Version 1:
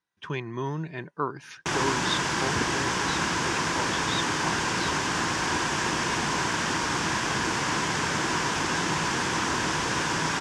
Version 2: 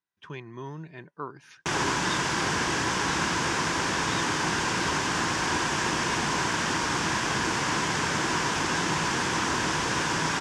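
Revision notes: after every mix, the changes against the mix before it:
speech −7.5 dB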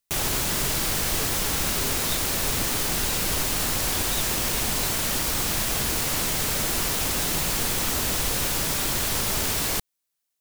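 background: entry −1.55 s
master: remove loudspeaker in its box 110–6,500 Hz, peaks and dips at 160 Hz +4 dB, 330 Hz +6 dB, 600 Hz −4 dB, 990 Hz +10 dB, 1,600 Hz +8 dB, 4,100 Hz −7 dB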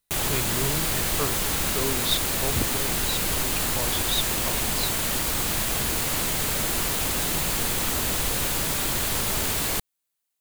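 speech +9.5 dB
background: add parametric band 5,500 Hz −4.5 dB 0.33 octaves

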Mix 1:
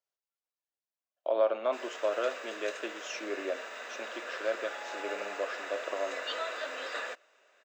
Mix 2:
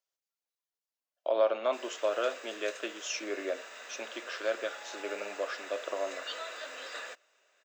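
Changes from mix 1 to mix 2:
background −6.5 dB
master: add high-shelf EQ 3,600 Hz +10 dB

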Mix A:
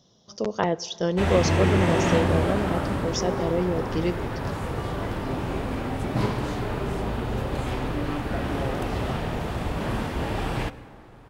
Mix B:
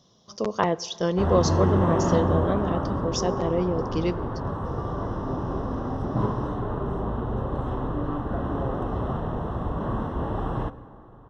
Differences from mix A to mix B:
background: add moving average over 19 samples
master: add parametric band 1,100 Hz +8 dB 0.28 octaves

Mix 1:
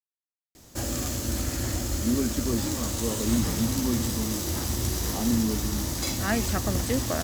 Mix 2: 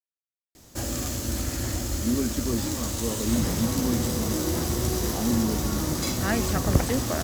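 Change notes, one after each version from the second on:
second sound +10.5 dB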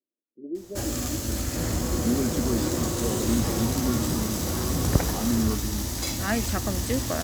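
speech: unmuted
second sound: entry −1.80 s

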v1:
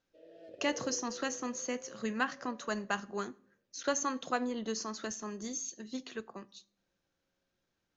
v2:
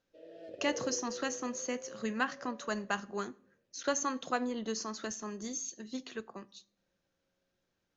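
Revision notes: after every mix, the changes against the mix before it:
background +4.0 dB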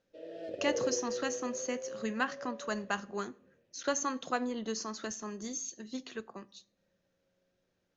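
background +6.5 dB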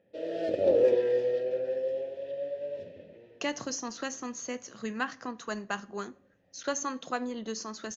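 speech: entry +2.80 s
background +11.0 dB

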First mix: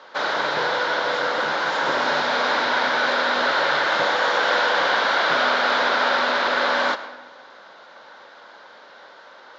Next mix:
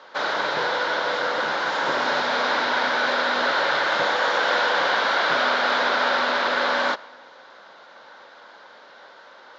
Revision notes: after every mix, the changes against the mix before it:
speech −4.0 dB
background: send −10.0 dB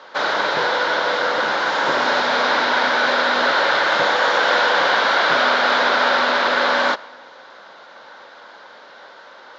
background +4.5 dB

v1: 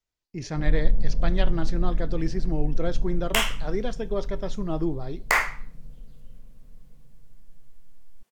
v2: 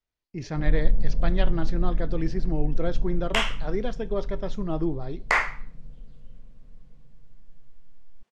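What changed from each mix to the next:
master: add Bessel low-pass filter 4,300 Hz, order 2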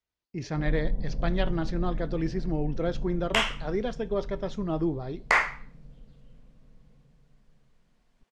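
master: add high-pass filter 57 Hz 6 dB per octave

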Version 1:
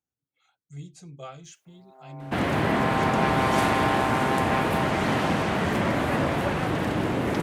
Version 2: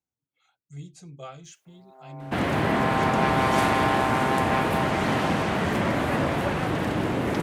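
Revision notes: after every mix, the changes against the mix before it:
first sound: send +10.0 dB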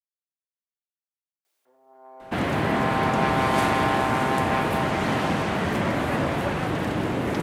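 speech: muted

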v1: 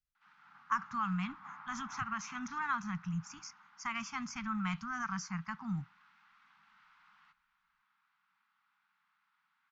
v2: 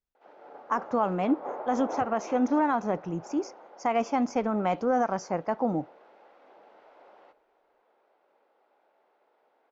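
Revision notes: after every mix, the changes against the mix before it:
master: remove elliptic band-stop filter 180–1,200 Hz, stop band 60 dB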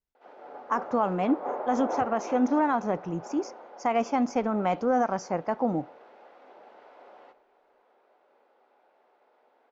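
reverb: on, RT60 0.45 s

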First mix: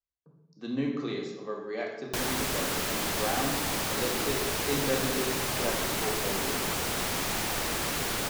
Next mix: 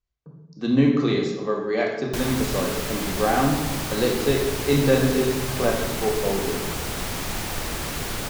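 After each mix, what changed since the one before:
speech +10.0 dB
master: add low-shelf EQ 130 Hz +11 dB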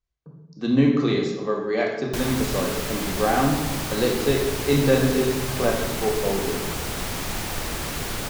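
nothing changed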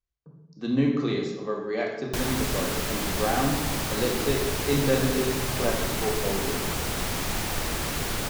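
speech −5.0 dB

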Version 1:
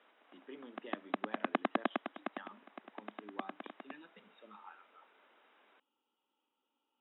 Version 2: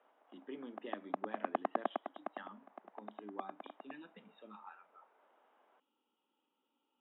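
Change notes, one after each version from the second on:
background: add resonant band-pass 760 Hz, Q 1.5
master: add low-shelf EQ 350 Hz +7 dB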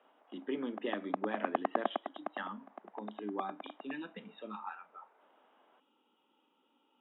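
speech +10.0 dB
background +3.0 dB

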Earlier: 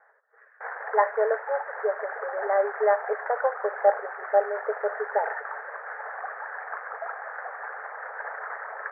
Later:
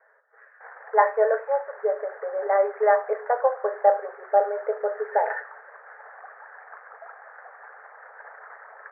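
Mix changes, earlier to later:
speech: send +11.0 dB
background −9.0 dB

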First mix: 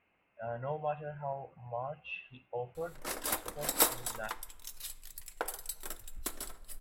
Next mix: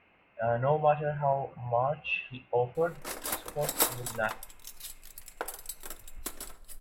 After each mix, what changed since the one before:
speech +10.5 dB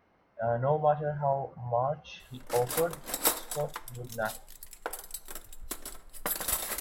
speech: remove low-pass with resonance 2,600 Hz, resonance Q 9.6
background: entry −0.55 s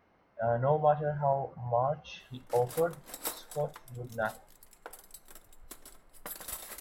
background −10.0 dB

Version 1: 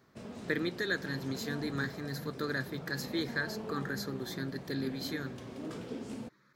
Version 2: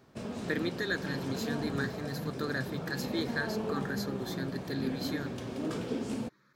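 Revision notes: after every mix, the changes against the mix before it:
background +6.5 dB
master: add notch filter 2,000 Hz, Q 24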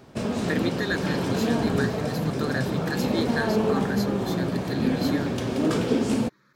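speech +4.5 dB
background +11.5 dB

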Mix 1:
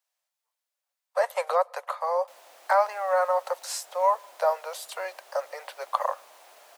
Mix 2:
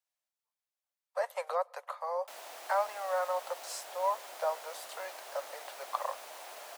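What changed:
speech −8.5 dB
background +6.0 dB

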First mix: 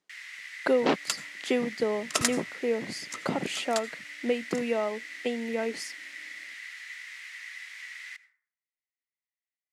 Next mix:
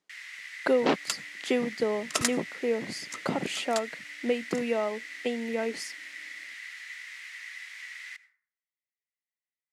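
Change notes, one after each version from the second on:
second sound: send −10.0 dB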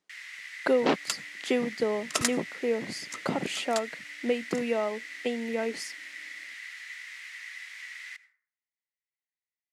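nothing changed

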